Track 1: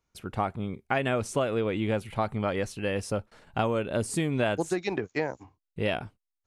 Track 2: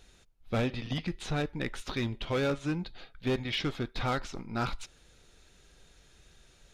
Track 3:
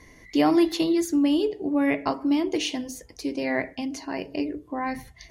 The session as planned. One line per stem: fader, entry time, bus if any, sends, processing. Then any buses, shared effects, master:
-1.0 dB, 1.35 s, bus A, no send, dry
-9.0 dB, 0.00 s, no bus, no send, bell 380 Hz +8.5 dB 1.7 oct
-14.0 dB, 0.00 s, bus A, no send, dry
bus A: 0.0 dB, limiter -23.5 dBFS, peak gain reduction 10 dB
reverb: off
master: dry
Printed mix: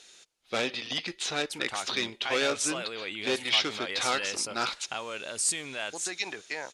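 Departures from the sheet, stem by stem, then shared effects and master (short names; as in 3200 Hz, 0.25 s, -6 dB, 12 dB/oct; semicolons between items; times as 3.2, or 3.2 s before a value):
stem 2 -9.0 dB -> 0.0 dB; stem 3: muted; master: extra weighting filter ITU-R 468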